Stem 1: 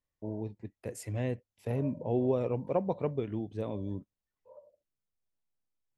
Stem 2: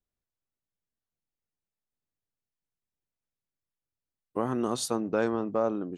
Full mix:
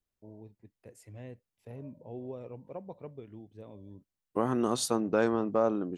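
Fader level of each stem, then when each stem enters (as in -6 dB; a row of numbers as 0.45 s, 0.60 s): -12.5 dB, +0.5 dB; 0.00 s, 0.00 s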